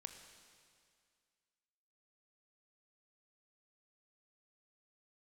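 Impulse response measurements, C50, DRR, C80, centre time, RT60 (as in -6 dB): 7.0 dB, 6.0 dB, 8.0 dB, 35 ms, 2.1 s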